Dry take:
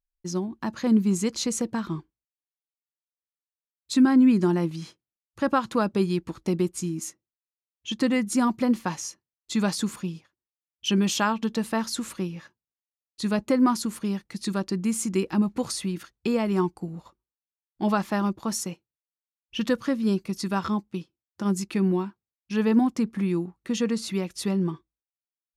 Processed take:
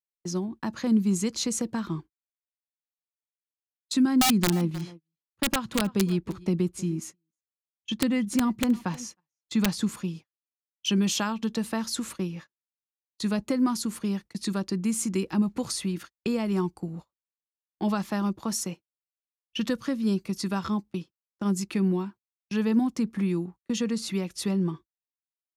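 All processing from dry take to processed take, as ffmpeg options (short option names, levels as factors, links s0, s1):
-filter_complex "[0:a]asettb=1/sr,asplit=3[s0][s1][s2];[s0]atrim=end=4.214[s3];[s1]atrim=start=4.21:end=9.89,asetpts=PTS-STARTPTS,afade=t=in:d=0.004:c=qsin,afade=t=out:st=5.676:d=0.004:c=qsin,bass=f=250:g=3,treble=f=4000:g=-6,aeval=exprs='(mod(3.98*val(0)+1,2)-1)/3.98':c=same,aecho=1:1:311:0.0841,atrim=end_sample=250488[s4];[s2]atrim=start=9.886[s5];[s3][s4]acrossfade=d=0.004:c1=hsin:c2=qsin[s6];[s6][s5]acrossfade=d=0.004:c1=qsin:c2=hsin,agate=range=0.0251:threshold=0.00891:ratio=16:detection=peak,acrossover=split=230|3000[s7][s8][s9];[s8]acompressor=threshold=0.0251:ratio=2[s10];[s7][s10][s9]amix=inputs=3:normalize=0"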